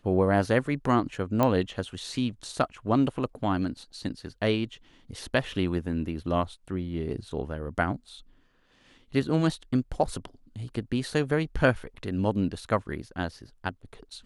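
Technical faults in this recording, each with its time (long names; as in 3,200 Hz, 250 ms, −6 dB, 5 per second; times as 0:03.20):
0:01.43: click −11 dBFS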